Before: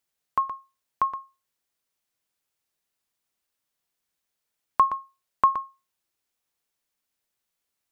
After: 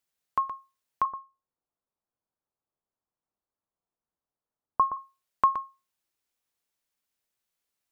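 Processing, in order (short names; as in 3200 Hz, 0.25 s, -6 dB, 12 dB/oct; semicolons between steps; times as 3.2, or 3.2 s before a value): 1.05–4.97 LPF 1200 Hz 24 dB/oct; gain -2.5 dB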